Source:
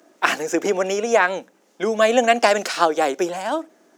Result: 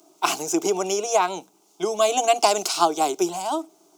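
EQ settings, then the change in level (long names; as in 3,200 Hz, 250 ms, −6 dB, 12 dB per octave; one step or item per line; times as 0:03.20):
high-shelf EQ 4,000 Hz +7.5 dB
phaser with its sweep stopped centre 350 Hz, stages 8
0.0 dB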